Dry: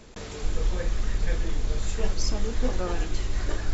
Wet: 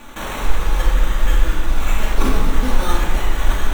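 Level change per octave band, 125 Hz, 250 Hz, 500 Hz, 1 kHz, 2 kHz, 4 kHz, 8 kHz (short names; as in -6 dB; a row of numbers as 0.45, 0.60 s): +8.0 dB, +9.0 dB, +5.5 dB, +15.0 dB, +12.5 dB, +8.5 dB, n/a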